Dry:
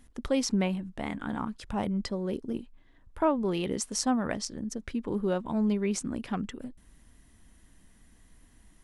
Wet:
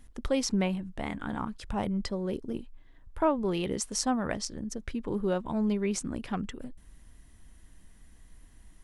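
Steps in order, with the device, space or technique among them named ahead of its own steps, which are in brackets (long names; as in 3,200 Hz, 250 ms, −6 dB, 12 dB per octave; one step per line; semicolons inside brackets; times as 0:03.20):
low shelf boost with a cut just above (low-shelf EQ 71 Hz +6.5 dB; parametric band 240 Hz −3 dB 0.56 octaves)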